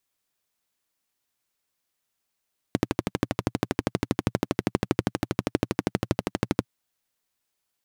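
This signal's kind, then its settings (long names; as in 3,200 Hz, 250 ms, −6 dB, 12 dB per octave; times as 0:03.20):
pulse-train model of a single-cylinder engine, steady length 3.90 s, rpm 1,500, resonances 120/190/280 Hz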